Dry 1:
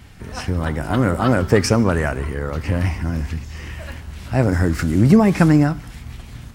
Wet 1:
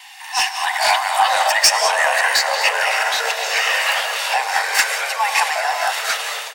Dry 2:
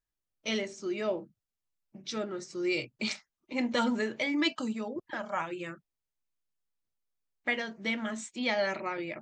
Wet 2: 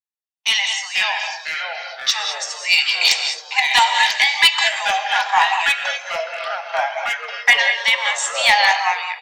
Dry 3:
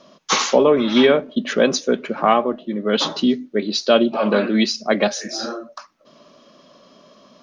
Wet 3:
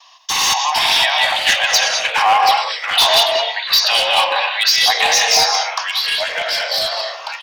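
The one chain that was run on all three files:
peaking EQ 1.3 kHz -11 dB 0.53 oct; comb 1.1 ms, depth 43%; gated-style reverb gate 230 ms rising, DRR 6.5 dB; compression 3:1, threshold -20 dBFS; peak limiter -17 dBFS; rippled Chebyshev high-pass 750 Hz, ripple 3 dB; gate with hold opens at -52 dBFS; hard clipper -27.5 dBFS; ever faster or slower copies 401 ms, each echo -3 st, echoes 3, each echo -6 dB; level rider gain up to 8 dB; peak normalisation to -3 dBFS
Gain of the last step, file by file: +13.5 dB, +14.0 dB, +11.0 dB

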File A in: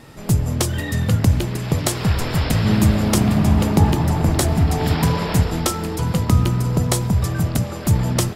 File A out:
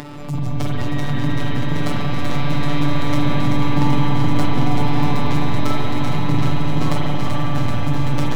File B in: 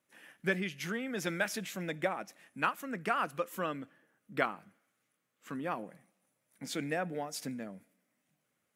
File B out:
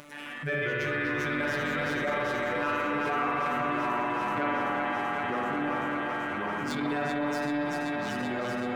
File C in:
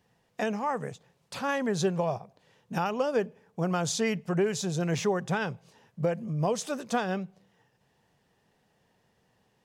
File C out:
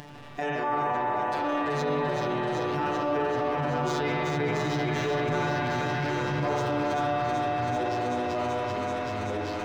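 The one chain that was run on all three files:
median filter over 3 samples; robot voice 146 Hz; spring tank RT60 2.9 s, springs 44 ms, chirp 20 ms, DRR -4 dB; ever faster or slower copies 90 ms, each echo -3 st, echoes 3, each echo -6 dB; treble shelf 4.4 kHz -9.5 dB; band-stop 460 Hz, Q 12; on a send: thinning echo 384 ms, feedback 82%, high-pass 470 Hz, level -4.5 dB; on the sum: transient shaper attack -8 dB, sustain +4 dB; dynamic bell 8.2 kHz, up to -6 dB, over -49 dBFS, Q 1.1; upward compressor, threshold -20 dBFS; trim -1.5 dB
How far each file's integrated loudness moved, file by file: -2.5 LU, +6.5 LU, +2.0 LU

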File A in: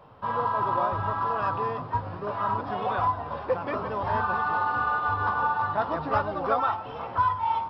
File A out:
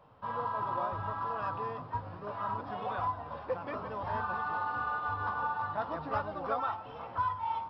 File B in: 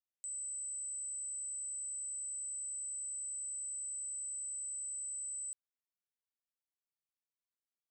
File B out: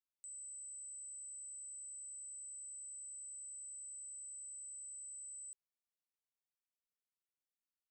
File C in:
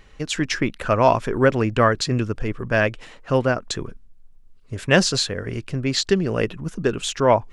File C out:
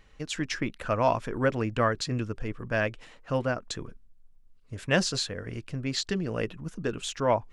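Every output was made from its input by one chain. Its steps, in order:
band-stop 390 Hz, Q 12; trim -8 dB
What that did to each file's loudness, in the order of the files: -8.0 LU, -8.0 LU, -8.5 LU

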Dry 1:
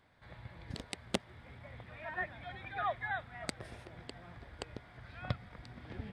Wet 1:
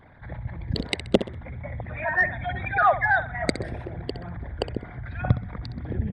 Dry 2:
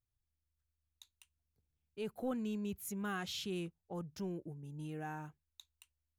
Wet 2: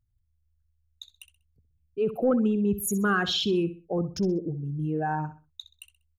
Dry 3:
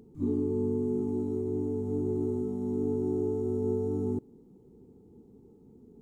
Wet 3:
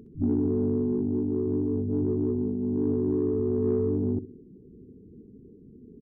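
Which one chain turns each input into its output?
resonances exaggerated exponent 2; feedback delay 64 ms, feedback 30%, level -13 dB; in parallel at -4 dB: saturation -27 dBFS; on the sum: normalise loudness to -27 LUFS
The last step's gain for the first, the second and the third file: +12.0 dB, +10.5 dB, +1.0 dB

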